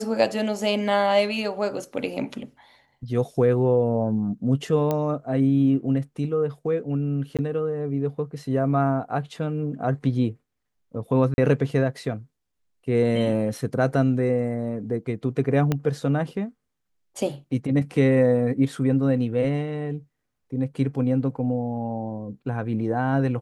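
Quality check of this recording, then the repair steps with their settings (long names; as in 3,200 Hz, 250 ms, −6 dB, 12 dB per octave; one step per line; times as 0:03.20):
0:04.91: click −12 dBFS
0:07.37–0:07.39: drop-out 17 ms
0:11.34–0:11.38: drop-out 41 ms
0:15.72: click −10 dBFS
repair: click removal
repair the gap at 0:07.37, 17 ms
repair the gap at 0:11.34, 41 ms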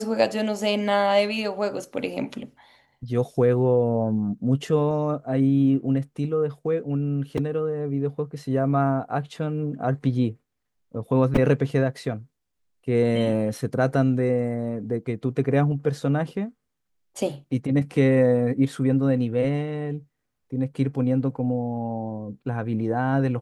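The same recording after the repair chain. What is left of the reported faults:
0:15.72: click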